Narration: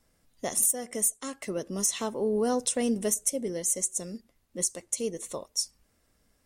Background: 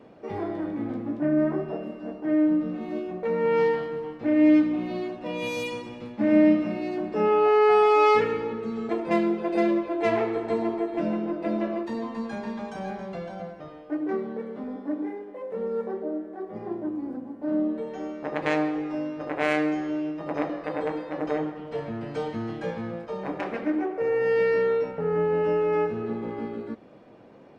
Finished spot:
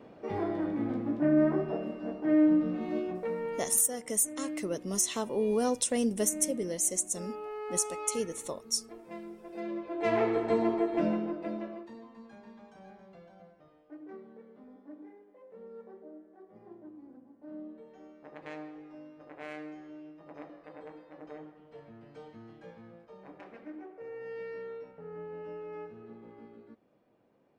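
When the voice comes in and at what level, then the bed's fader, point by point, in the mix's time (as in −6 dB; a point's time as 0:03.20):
3.15 s, −1.5 dB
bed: 0:03.10 −1.5 dB
0:03.75 −20.5 dB
0:09.42 −20.5 dB
0:10.25 −1 dB
0:11.03 −1 dB
0:12.06 −18.5 dB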